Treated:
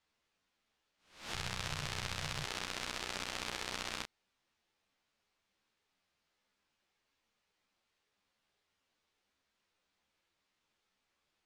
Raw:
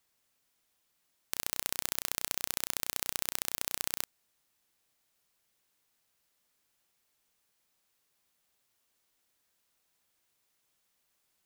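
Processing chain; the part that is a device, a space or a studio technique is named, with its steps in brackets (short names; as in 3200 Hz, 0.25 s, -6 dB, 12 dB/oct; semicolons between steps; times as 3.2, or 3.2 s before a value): spectral swells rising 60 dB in 0.49 s; string-machine ensemble chorus (ensemble effect; LPF 4200 Hz 12 dB/oct); 1.34–2.45 resonant low shelf 190 Hz +8.5 dB, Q 3; gain +1.5 dB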